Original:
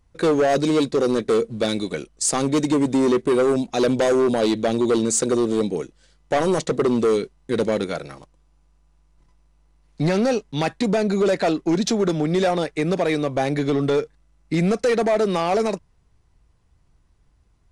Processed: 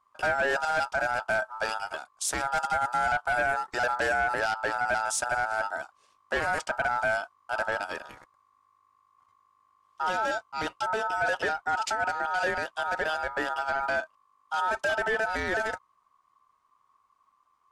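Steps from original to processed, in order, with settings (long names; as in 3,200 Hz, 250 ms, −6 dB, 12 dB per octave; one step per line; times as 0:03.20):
ring modulation 1,100 Hz
0:10.03–0:11.12: notch filter 1,800 Hz, Q 6.2
level −5.5 dB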